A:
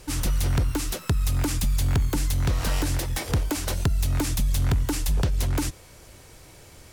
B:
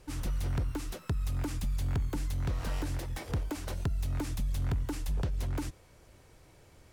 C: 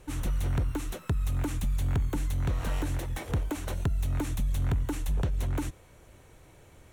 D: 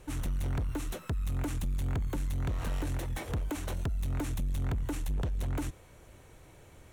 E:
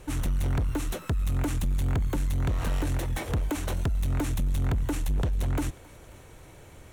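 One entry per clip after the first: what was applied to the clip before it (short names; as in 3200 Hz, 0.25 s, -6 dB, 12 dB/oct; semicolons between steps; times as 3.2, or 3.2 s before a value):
high shelf 3000 Hz -8 dB; gain -8.5 dB
bell 4900 Hz -12.5 dB 0.23 oct; gain +3.5 dB
soft clip -27.5 dBFS, distortion -15 dB
thinning echo 0.27 s, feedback 70%, level -21.5 dB; gain +5.5 dB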